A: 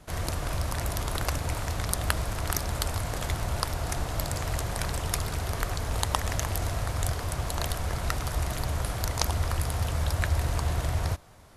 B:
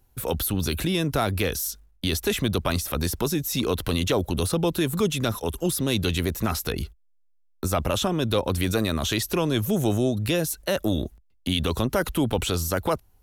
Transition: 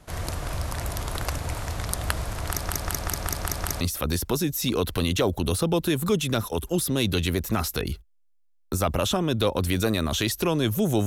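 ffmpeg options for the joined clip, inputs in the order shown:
-filter_complex "[0:a]apad=whole_dur=11.06,atrim=end=11.06,asplit=7[a][b][c][d][e][f][g];[a]atrim=end=2.672[h];[b]atrim=start=2.478:end=2.672[i];[c]atrim=start=2.478:end=2.672[j];[d]atrim=start=2.478:end=2.672[k];[e]atrim=start=2.478:end=2.672[l];[f]atrim=start=2.478:end=2.672[m];[g]atrim=start=2.478:end=2.672[n];[1:a]atrim=start=2.718:end=9.97[o];[h][i]acrossfade=d=0.004:c1=hsin:c2=hsin[p];[p][j]acrossfade=d=0.004:c1=hsin:c2=hsin[q];[q][k]acrossfade=d=0.004:c1=hsin:c2=hsin[r];[r][l]acrossfade=d=0.004:c1=hsin:c2=hsin[s];[s][m]acrossfade=d=0.004:c1=hsin:c2=hsin[t];[t][n]acrossfade=d=0.004:c1=hsin:c2=hsin[u];[u][o]acrossfade=d=0.004:c1=hsin:c2=hsin"

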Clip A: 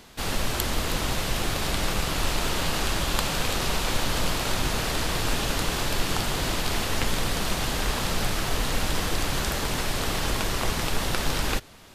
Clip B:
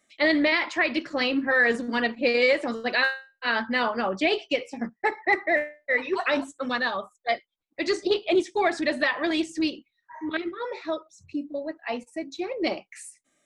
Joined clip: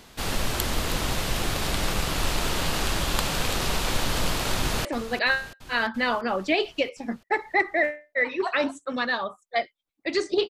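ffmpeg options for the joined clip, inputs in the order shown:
-filter_complex "[0:a]apad=whole_dur=10.49,atrim=end=10.49,atrim=end=4.852[a];[1:a]atrim=start=2.578:end=8.22[b];[a][b]acrossfade=d=0.004:c1=hsin:c2=hsin,asplit=2[c][d];[d]afade=t=in:st=4.58:d=0.01,afade=t=out:st=4.85:d=0.01,aecho=0:1:340|680|1020|1360|1700|2040|2380|2720|3060:0.199526|0.139668|0.0977679|0.0684375|0.0479062|0.0335344|0.0234741|0.0164318|0.0115023[e];[c][e]amix=inputs=2:normalize=0"

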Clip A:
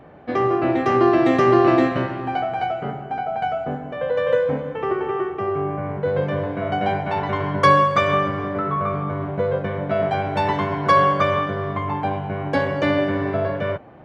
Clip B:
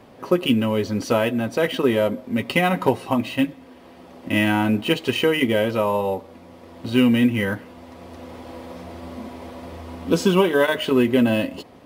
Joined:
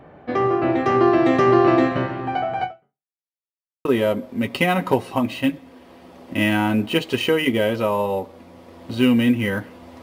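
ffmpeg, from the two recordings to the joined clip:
-filter_complex "[0:a]apad=whole_dur=10.02,atrim=end=10.02,asplit=2[a][b];[a]atrim=end=3.17,asetpts=PTS-STARTPTS,afade=t=out:st=2.64:d=0.53:c=exp[c];[b]atrim=start=3.17:end=3.85,asetpts=PTS-STARTPTS,volume=0[d];[1:a]atrim=start=1.8:end=7.97,asetpts=PTS-STARTPTS,afade=t=in:d=0.004:c=hsin[e];[c][d][e]concat=n=3:v=0:a=1"

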